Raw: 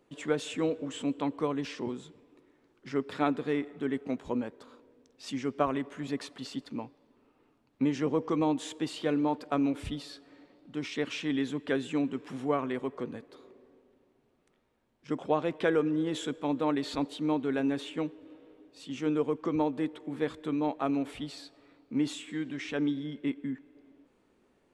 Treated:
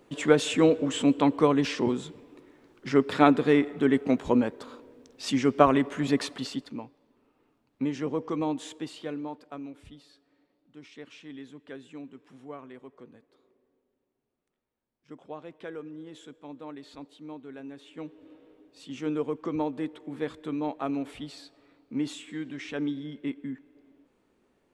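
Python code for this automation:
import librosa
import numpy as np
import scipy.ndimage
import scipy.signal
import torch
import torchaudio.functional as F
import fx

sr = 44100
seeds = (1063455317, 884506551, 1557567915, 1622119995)

y = fx.gain(x, sr, db=fx.line((6.31, 9.0), (6.82, -1.5), (8.67, -1.5), (9.7, -13.0), (17.8, -13.0), (18.23, -1.0)))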